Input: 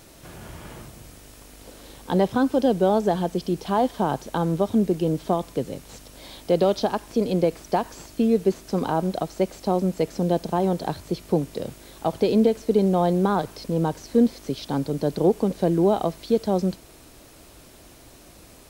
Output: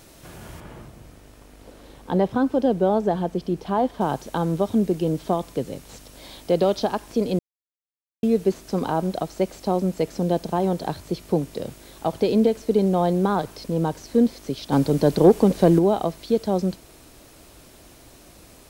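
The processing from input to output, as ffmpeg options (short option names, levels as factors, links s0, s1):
-filter_complex "[0:a]asettb=1/sr,asplit=3[s0][s1][s2];[s0]atrim=end=0.604[s3];[s1]atrim=start=0.6:end=4.01,asetpts=PTS-STARTPTS,afade=t=in:d=0.004:c=qsin,afade=t=out:st=3.406:d=0.004:c=qsin,highshelf=f=3000:g=-10[s4];[s2]atrim=start=4.006[s5];[s3][s4]acrossfade=d=0.004:c1=hsin:c2=qsin[s6];[s6][s5]acrossfade=d=0.004:c1=qsin:c2=hsin,asettb=1/sr,asplit=3[s7][s8][s9];[s7]atrim=end=14.724[s10];[s8]atrim=start=14.72:end=15.79,asetpts=PTS-STARTPTS,afade=t=in:d=0.004:c=qsin,afade=t=out:st=1.066:d=0.004:c=qsin,acontrast=60[s11];[s9]atrim=start=15.786[s12];[s10][s11]acrossfade=d=0.004:c1=hsin:c2=qsin[s13];[s13][s12]acrossfade=d=0.004:c1=qsin:c2=hsin,asplit=3[s14][s15][s16];[s14]atrim=end=7.39,asetpts=PTS-STARTPTS,afade=t=out:st=7.386:d=0.004:c=hsin[s17];[s15]atrim=start=7.39:end=8.23,asetpts=PTS-STARTPTS,volume=0[s18];[s16]atrim=start=8.23,asetpts=PTS-STARTPTS,afade=t=in:d=0.004:c=hsin[s19];[s17][s18][s19]concat=n=3:v=0:a=1"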